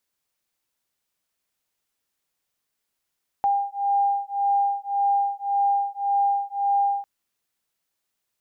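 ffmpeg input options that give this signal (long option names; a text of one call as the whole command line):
ffmpeg -f lavfi -i "aevalsrc='0.0708*(sin(2*PI*801*t)+sin(2*PI*802.8*t))':duration=3.6:sample_rate=44100" out.wav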